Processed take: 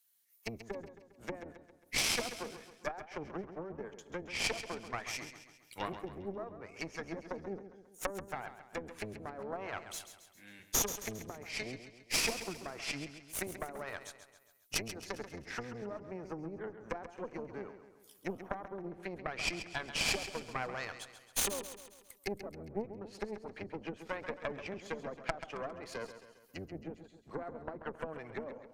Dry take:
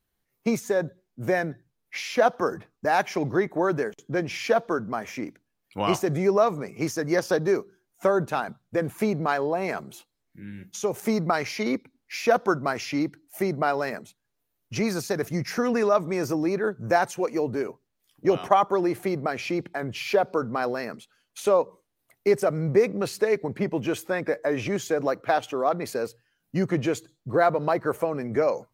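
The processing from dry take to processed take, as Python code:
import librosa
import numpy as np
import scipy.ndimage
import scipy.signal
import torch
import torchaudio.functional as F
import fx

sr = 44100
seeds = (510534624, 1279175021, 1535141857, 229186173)

p1 = fx.octave_divider(x, sr, octaves=1, level_db=2.0)
p2 = fx.env_lowpass_down(p1, sr, base_hz=340.0, full_db=-18.5)
p3 = np.diff(p2, prepend=0.0)
p4 = fx.cheby_harmonics(p3, sr, harmonics=(4,), levels_db=(-8,), full_scale_db=-27.5)
p5 = p4 + fx.echo_feedback(p4, sr, ms=135, feedback_pct=50, wet_db=-11.0, dry=0)
y = F.gain(torch.from_numpy(p5), 8.0).numpy()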